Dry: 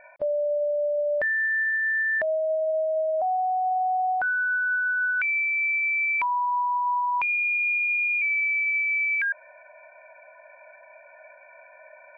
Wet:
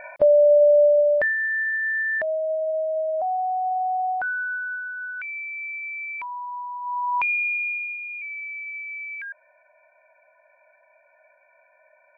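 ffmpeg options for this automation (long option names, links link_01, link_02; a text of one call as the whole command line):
ffmpeg -i in.wav -af "volume=21dB,afade=type=out:start_time=0.78:duration=0.58:silence=0.298538,afade=type=out:start_time=4.06:duration=0.84:silence=0.398107,afade=type=in:start_time=6.8:duration=0.41:silence=0.298538,afade=type=out:start_time=7.21:duration=0.78:silence=0.251189" out.wav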